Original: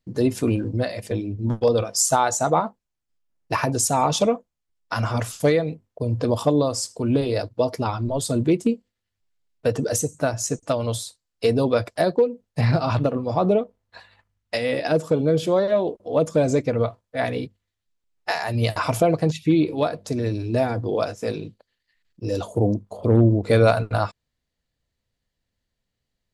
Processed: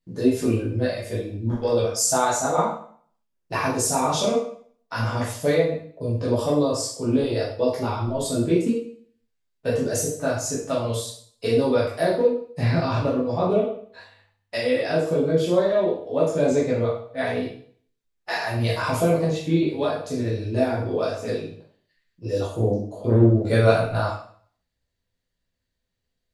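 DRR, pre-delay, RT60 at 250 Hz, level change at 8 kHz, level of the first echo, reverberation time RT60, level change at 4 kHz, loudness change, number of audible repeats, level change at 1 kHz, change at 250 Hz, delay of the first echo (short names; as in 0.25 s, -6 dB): -7.0 dB, 5 ms, 0.55 s, -1.0 dB, none, 0.55 s, -0.5 dB, -0.5 dB, none, -2.0 dB, -0.5 dB, none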